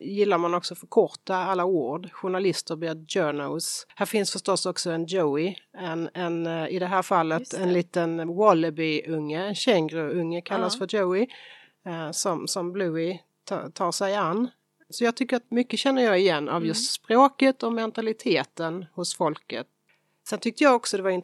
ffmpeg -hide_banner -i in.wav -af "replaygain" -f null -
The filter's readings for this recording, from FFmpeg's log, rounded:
track_gain = +4.9 dB
track_peak = 0.461